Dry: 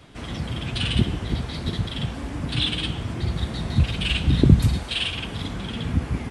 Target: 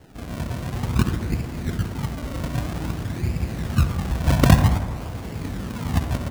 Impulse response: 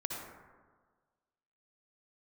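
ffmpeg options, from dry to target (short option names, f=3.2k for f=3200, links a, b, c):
-filter_complex "[0:a]lowpass=1k,acrusher=samples=36:mix=1:aa=0.000001:lfo=1:lforange=36:lforate=0.52,asplit=2[a][b];[1:a]atrim=start_sample=2205[c];[b][c]afir=irnorm=-1:irlink=0,volume=-5.5dB[d];[a][d]amix=inputs=2:normalize=0,volume=-2.5dB"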